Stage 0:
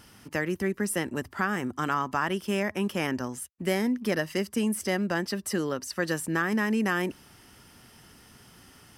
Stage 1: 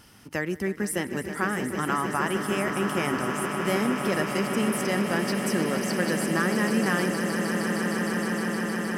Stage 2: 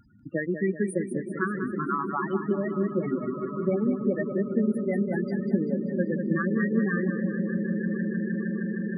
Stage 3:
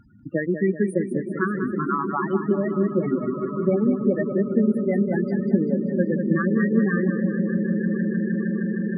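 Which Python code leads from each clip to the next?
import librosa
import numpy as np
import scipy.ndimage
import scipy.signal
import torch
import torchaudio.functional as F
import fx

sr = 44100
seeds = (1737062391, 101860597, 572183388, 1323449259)

y1 = fx.echo_swell(x, sr, ms=155, loudest=8, wet_db=-10.5)
y2 = fx.transient(y1, sr, attack_db=6, sustain_db=-8)
y2 = fx.spec_topn(y2, sr, count=8)
y2 = fx.echo_feedback(y2, sr, ms=194, feedback_pct=51, wet_db=-9)
y3 = fx.high_shelf(y2, sr, hz=2700.0, db=-9.5)
y3 = y3 * librosa.db_to_amplitude(5.0)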